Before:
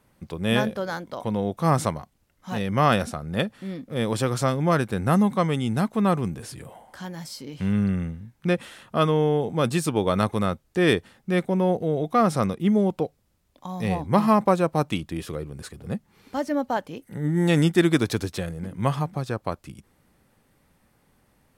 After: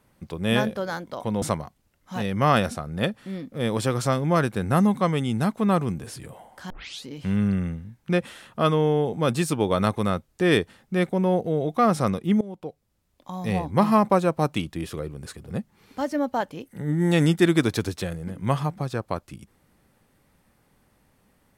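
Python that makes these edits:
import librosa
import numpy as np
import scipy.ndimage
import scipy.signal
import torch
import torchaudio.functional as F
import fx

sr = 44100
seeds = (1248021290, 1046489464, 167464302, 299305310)

y = fx.edit(x, sr, fx.cut(start_s=1.42, length_s=0.36),
    fx.tape_start(start_s=7.06, length_s=0.36),
    fx.fade_in_from(start_s=12.77, length_s=0.91, floor_db=-20.0), tone=tone)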